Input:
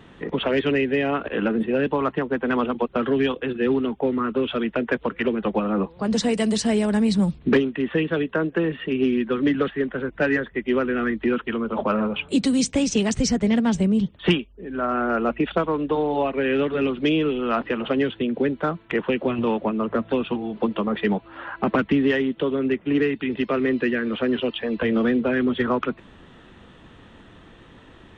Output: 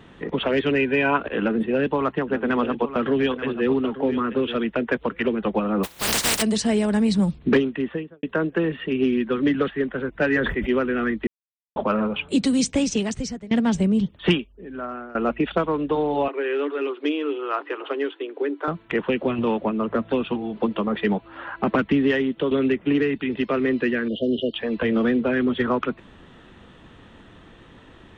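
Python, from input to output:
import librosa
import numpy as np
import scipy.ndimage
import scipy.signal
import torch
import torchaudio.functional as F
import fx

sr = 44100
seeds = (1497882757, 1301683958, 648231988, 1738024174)

y = fx.small_body(x, sr, hz=(980.0, 1500.0, 2400.0), ring_ms=45, db=fx.line((0.76, 12.0), (1.16, 17.0)), at=(0.76, 1.16), fade=0.02)
y = fx.echo_single(y, sr, ms=883, db=-12.0, at=(2.27, 4.56), fade=0.02)
y = fx.spec_flatten(y, sr, power=0.17, at=(5.83, 6.41), fade=0.02)
y = fx.studio_fade_out(y, sr, start_s=7.71, length_s=0.52)
y = fx.sustainer(y, sr, db_per_s=42.0, at=(10.26, 10.71))
y = fx.cheby_ripple_highpass(y, sr, hz=280.0, ripple_db=6, at=(16.28, 18.68))
y = fx.band_squash(y, sr, depth_pct=100, at=(22.51, 23.18))
y = fx.brickwall_bandstop(y, sr, low_hz=700.0, high_hz=2800.0, at=(24.08, 24.54))
y = fx.edit(y, sr, fx.silence(start_s=11.27, length_s=0.49),
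    fx.fade_out_to(start_s=12.8, length_s=0.71, floor_db=-23.5),
    fx.fade_out_to(start_s=14.39, length_s=0.76, floor_db=-21.5), tone=tone)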